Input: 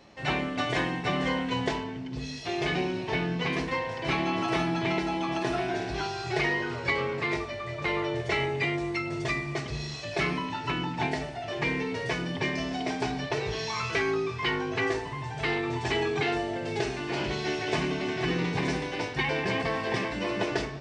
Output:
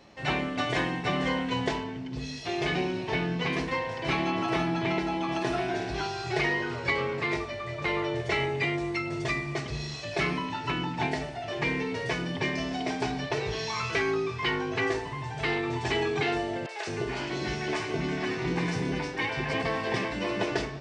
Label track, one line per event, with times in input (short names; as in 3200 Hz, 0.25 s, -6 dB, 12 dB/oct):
4.310000	5.290000	high shelf 4400 Hz -4.5 dB
16.660000	19.540000	three bands offset in time mids, highs, lows 30/210 ms, splits 590/3300 Hz